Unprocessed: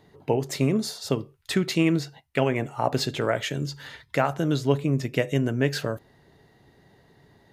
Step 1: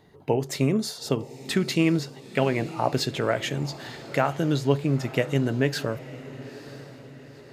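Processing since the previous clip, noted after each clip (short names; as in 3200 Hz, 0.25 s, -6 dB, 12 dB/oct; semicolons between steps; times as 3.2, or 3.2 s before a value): diffused feedback echo 0.931 s, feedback 47%, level -16 dB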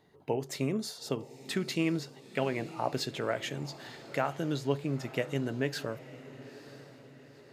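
low shelf 110 Hz -8 dB; gain -7 dB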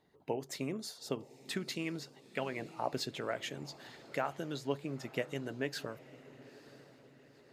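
harmonic-percussive split harmonic -7 dB; gain -3 dB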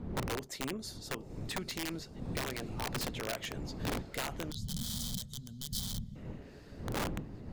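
wind noise 200 Hz -36 dBFS; wrapped overs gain 28.5 dB; spectral gain 4.51–6.16, 240–3000 Hz -23 dB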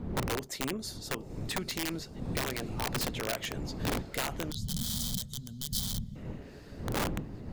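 high shelf 11000 Hz +3.5 dB; gain +3.5 dB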